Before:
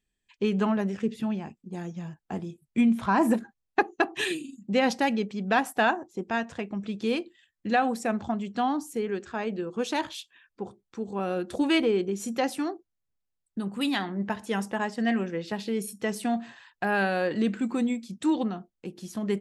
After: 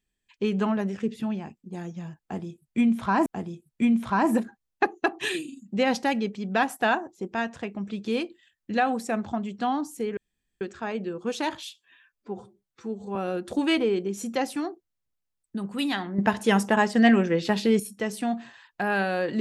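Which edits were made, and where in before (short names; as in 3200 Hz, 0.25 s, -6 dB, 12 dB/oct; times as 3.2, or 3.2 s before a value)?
2.22–3.26 loop, 2 plays
9.13 insert room tone 0.44 s
10.19–11.18 stretch 1.5×
14.21–15.82 gain +8 dB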